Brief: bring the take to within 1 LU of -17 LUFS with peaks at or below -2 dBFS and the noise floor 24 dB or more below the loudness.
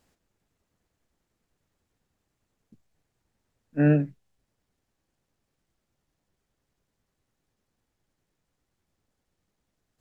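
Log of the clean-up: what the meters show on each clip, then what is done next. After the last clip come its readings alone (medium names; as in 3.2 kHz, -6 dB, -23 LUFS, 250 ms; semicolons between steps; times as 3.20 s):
loudness -24.5 LUFS; peak level -10.5 dBFS; loudness target -17.0 LUFS
-> trim +7.5 dB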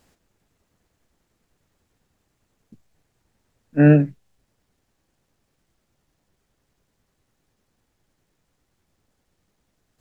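loudness -17.0 LUFS; peak level -3.0 dBFS; noise floor -74 dBFS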